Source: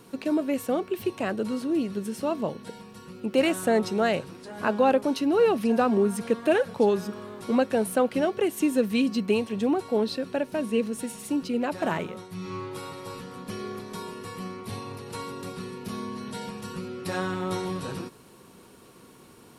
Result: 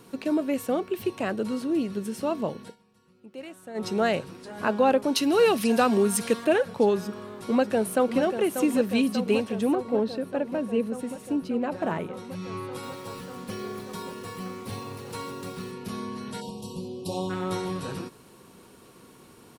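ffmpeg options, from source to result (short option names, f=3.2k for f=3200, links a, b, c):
-filter_complex "[0:a]asettb=1/sr,asplit=3[a][b][c];[a]atrim=end=5.154[d];[b]atrim=start=5.15:end=6.45,asetpts=PTS-STARTPTS,afade=t=in:d=0.004:c=qsin,afade=t=out:st=1.296:d=0.004:c=qsin,highshelf=f=2.2k:g=12[e];[c]atrim=start=6.446[f];[d][e]acrossfade=d=0.004:c1=hsin:c2=qsin[g];[g][f]acrossfade=d=0.004:c1=qsin:c2=hsin,asplit=2[h][i];[i]afade=t=in:st=7.04:d=0.01,afade=t=out:st=8.22:d=0.01,aecho=0:1:590|1180|1770|2360|2950|3540|4130|4720|5310|5900|6490|7080:0.375837|0.30067|0.240536|0.192429|0.153943|0.123154|0.0985235|0.0788188|0.0630551|0.050444|0.0403552|0.0322842[j];[h][j]amix=inputs=2:normalize=0,asettb=1/sr,asplit=3[k][l][m];[k]atrim=end=9.754[n];[l]atrim=start=9.75:end=12.14,asetpts=PTS-STARTPTS,afade=t=in:d=0.004:c=qsin,afade=t=out:st=2.386:d=0.004:c=qsin,highshelf=f=2k:g=-9.5[o];[m]atrim=start=12.136[p];[n][o]acrossfade=d=0.004:c1=hsin:c2=qsin[q];[q][p]acrossfade=d=0.004:c1=qsin:c2=hsin,asettb=1/sr,asplit=3[r][s][t];[r]atrim=end=12.834[u];[s]atrim=start=12.83:end=15.72,asetpts=PTS-STARTPTS,afade=t=in:d=0.004:c=qsin,afade=t=out:st=2.886:d=0.004:c=qsin,acrusher=bits=7:mix=0:aa=0.5[v];[t]atrim=start=15.716[w];[u][v]acrossfade=d=0.004:c1=hsin:c2=qsin[x];[x][w]acrossfade=d=0.004:c1=qsin:c2=hsin,asplit=3[y][z][aa];[y]afade=t=out:st=16.4:d=0.02[ab];[z]asuperstop=centerf=1700:order=8:qfactor=0.89,afade=t=in:st=16.4:d=0.02,afade=t=out:st=17.29:d=0.02[ac];[aa]afade=t=in:st=17.29:d=0.02[ad];[ab][ac][ad]amix=inputs=3:normalize=0,asplit=3[ae][af][ag];[ae]atrim=end=2.76,asetpts=PTS-STARTPTS,afade=t=out:st=2.63:d=0.13:silence=0.125893[ah];[af]atrim=start=2.76:end=3.74,asetpts=PTS-STARTPTS,volume=-18dB[ai];[ag]atrim=start=3.74,asetpts=PTS-STARTPTS,afade=t=in:d=0.13:silence=0.125893[aj];[ah][ai][aj]concat=n=3:v=0:a=1"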